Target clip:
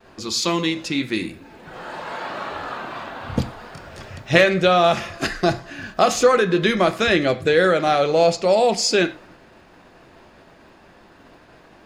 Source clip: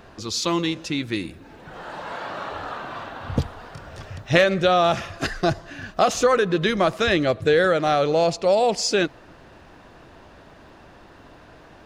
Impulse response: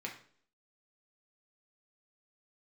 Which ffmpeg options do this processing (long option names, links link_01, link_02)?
-filter_complex "[0:a]agate=range=-33dB:threshold=-43dB:ratio=3:detection=peak,asplit=2[link_01][link_02];[1:a]atrim=start_sample=2205,afade=type=out:start_time=0.16:duration=0.01,atrim=end_sample=7497,highshelf=frequency=4200:gain=9[link_03];[link_02][link_03]afir=irnorm=-1:irlink=0,volume=-3dB[link_04];[link_01][link_04]amix=inputs=2:normalize=0,volume=-1.5dB"